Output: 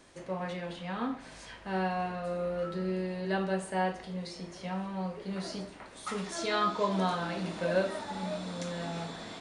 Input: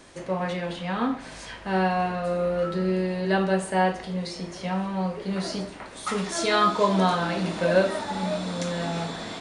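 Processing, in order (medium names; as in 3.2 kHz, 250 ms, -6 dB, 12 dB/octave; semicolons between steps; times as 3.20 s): 6.35–6.92 s: low-pass 7.7 kHz 12 dB/octave; trim -8 dB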